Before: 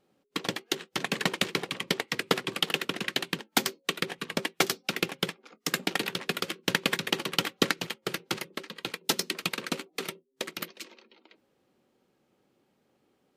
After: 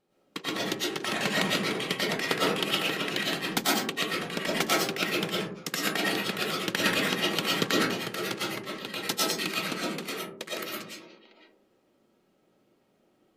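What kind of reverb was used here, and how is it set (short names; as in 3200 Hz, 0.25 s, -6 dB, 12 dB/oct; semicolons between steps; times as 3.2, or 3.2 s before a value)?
digital reverb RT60 0.63 s, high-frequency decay 0.3×, pre-delay 75 ms, DRR -6.5 dB; gain -4.5 dB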